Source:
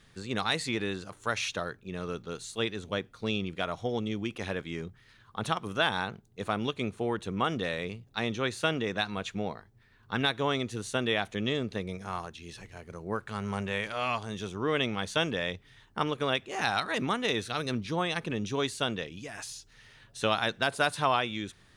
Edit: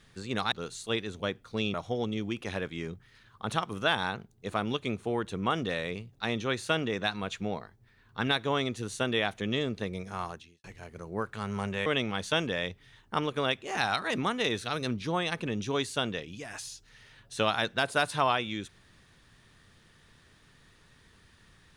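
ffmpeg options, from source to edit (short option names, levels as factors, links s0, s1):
-filter_complex "[0:a]asplit=5[s0][s1][s2][s3][s4];[s0]atrim=end=0.522[s5];[s1]atrim=start=2.208:end=3.432[s6];[s2]atrim=start=3.678:end=12.58,asetpts=PTS-STARTPTS,afade=t=out:st=8.612:d=0.29:c=qua[s7];[s3]atrim=start=12.58:end=13.802,asetpts=PTS-STARTPTS,afade=t=in:d=0.004:c=hsin[s8];[s4]atrim=start=14.698[s9];[s5][s6]acrossfade=d=0.004:c1=hsin:c2=hsin[s10];[s7][s8]concat=n=2:v=0:a=1[s11];[s10][s11]acrossfade=d=0.004:c1=hsin:c2=hsin[s12];[s12][s9]acrossfade=d=0.004:c1=hsin:c2=hsin"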